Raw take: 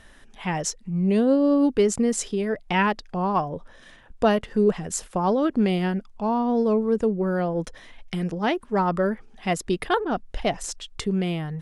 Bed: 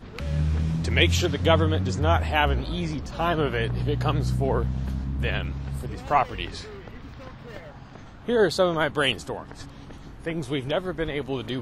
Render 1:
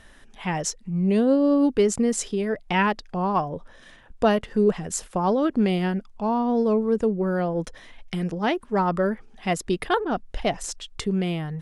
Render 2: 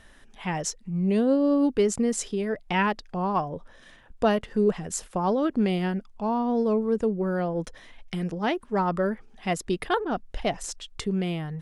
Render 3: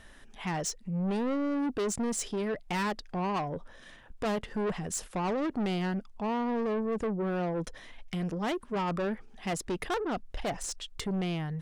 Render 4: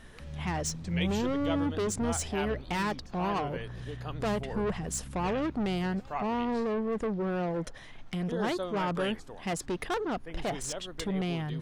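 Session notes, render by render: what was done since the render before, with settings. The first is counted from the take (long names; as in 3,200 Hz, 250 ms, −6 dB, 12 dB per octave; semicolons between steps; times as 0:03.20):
no processing that can be heard
level −2.5 dB
soft clipping −27.5 dBFS, distortion −8 dB
mix in bed −14.5 dB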